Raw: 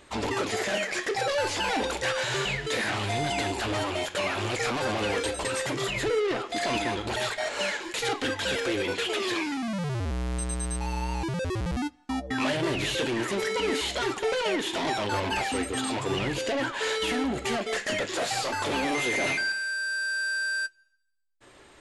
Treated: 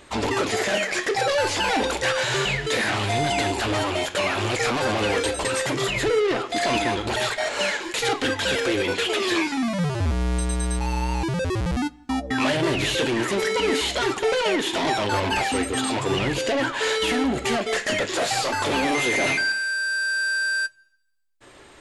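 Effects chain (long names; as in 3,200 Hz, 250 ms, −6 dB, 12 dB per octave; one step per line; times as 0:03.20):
0:09.30–0:10.79: double-tracking delay 12 ms −5 dB
on a send: high-pass filter 52 Hz + convolution reverb RT60 0.45 s, pre-delay 7 ms, DRR 22 dB
on the sum: level +5 dB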